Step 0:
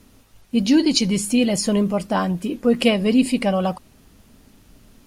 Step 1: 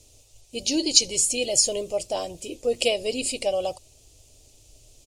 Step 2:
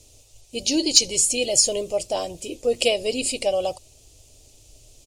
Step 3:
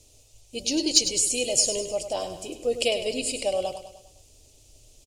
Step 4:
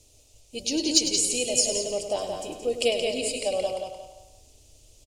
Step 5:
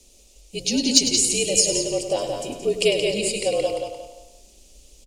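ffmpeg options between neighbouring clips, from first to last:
-af "firequalizer=gain_entry='entry(120,0);entry(190,-24);entry(330,-4);entry(600,2);entry(1000,-13);entry(1600,-19);entry(2500,0);entry(7300,13);entry(12000,-2)':delay=0.05:min_phase=1,volume=-3dB"
-af "asoftclip=type=tanh:threshold=-2dB,volume=2.5dB"
-af "aecho=1:1:101|202|303|404|505:0.316|0.158|0.0791|0.0395|0.0198,volume=-4dB"
-filter_complex "[0:a]asplit=2[a][b];[b]adelay=174,lowpass=f=4.4k:p=1,volume=-4dB,asplit=2[c][d];[d]adelay=174,lowpass=f=4.4k:p=1,volume=0.33,asplit=2[e][f];[f]adelay=174,lowpass=f=4.4k:p=1,volume=0.33,asplit=2[g][h];[h]adelay=174,lowpass=f=4.4k:p=1,volume=0.33[i];[a][c][e][g][i]amix=inputs=5:normalize=0,volume=-1.5dB"
-af "afreqshift=-52,volume=4.5dB"

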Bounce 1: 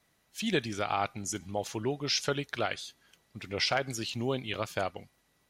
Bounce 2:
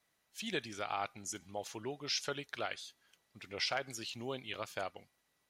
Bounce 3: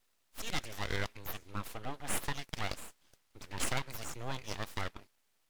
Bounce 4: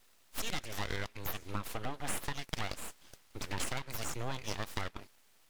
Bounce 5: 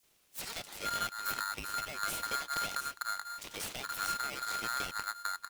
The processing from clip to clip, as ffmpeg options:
-af "lowshelf=f=320:g=-8.5,volume=-6dB"
-af "aeval=exprs='abs(val(0))':c=same,volume=4dB"
-af "acompressor=threshold=-42dB:ratio=6,volume=10dB"
-filter_complex "[0:a]acrossover=split=610|4200[a][b][c];[b]adelay=30[d];[a]adelay=480[e];[e][d][c]amix=inputs=3:normalize=0,aeval=exprs='val(0)*sgn(sin(2*PI*1400*n/s))':c=same"

